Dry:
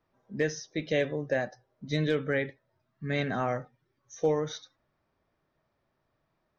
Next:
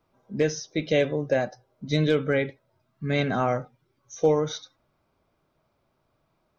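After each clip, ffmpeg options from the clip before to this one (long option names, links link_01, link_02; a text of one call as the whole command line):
ffmpeg -i in.wav -af "bandreject=frequency=1800:width=5.6,volume=5.5dB" out.wav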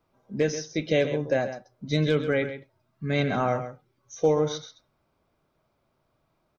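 ffmpeg -i in.wav -af "aecho=1:1:133:0.282,volume=-1dB" out.wav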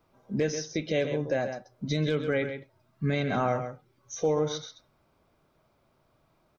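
ffmpeg -i in.wav -af "alimiter=limit=-21.5dB:level=0:latency=1:release=422,volume=4dB" out.wav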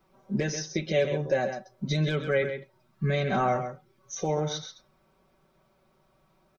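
ffmpeg -i in.wav -af "aecho=1:1:5.3:0.73" out.wav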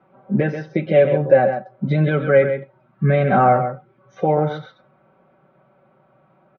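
ffmpeg -i in.wav -af "highpass=100,equalizer=frequency=130:width_type=q:width=4:gain=8,equalizer=frequency=190:width_type=q:width=4:gain=4,equalizer=frequency=280:width_type=q:width=4:gain=7,equalizer=frequency=530:width_type=q:width=4:gain=8,equalizer=frequency=770:width_type=q:width=4:gain=7,equalizer=frequency=1400:width_type=q:width=4:gain=7,lowpass=frequency=2700:width=0.5412,lowpass=frequency=2700:width=1.3066,volume=5dB" out.wav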